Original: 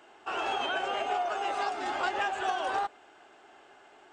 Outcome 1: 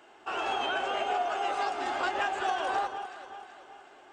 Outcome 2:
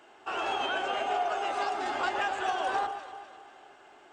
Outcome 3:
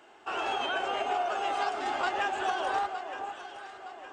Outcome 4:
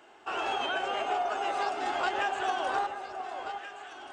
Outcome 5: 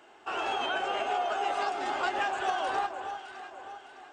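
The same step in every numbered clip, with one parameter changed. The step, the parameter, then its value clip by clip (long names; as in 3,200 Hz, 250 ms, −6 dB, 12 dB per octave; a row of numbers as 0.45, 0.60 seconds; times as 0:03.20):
delay that swaps between a low-pass and a high-pass, delay time: 189, 126, 457, 715, 305 milliseconds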